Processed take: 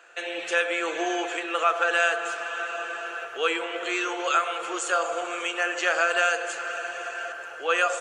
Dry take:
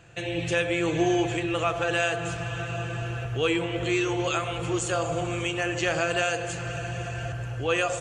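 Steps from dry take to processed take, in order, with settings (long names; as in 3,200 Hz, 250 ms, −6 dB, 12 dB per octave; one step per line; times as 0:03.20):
high-pass filter 430 Hz 24 dB per octave
parametric band 1,400 Hz +9.5 dB 0.61 octaves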